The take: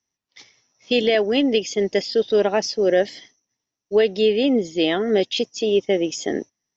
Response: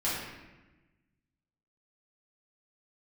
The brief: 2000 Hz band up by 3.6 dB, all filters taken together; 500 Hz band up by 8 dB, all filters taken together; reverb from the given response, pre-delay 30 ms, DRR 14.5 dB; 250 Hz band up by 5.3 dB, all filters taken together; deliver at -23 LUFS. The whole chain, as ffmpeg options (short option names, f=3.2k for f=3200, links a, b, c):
-filter_complex "[0:a]equalizer=f=250:t=o:g=3.5,equalizer=f=500:t=o:g=8.5,equalizer=f=2k:t=o:g=4,asplit=2[a][b];[1:a]atrim=start_sample=2205,adelay=30[c];[b][c]afir=irnorm=-1:irlink=0,volume=-23dB[d];[a][d]amix=inputs=2:normalize=0,volume=-9.5dB"